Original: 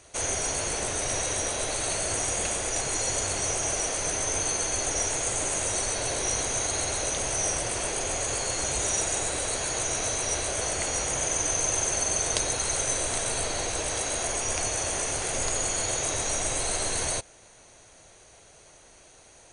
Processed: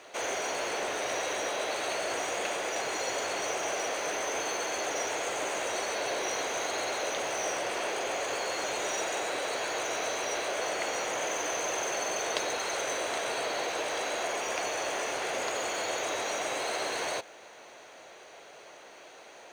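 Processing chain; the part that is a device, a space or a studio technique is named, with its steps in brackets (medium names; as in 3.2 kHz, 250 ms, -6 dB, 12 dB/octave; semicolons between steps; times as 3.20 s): phone line with mismatched companding (band-pass 370–3400 Hz; companding laws mixed up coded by mu)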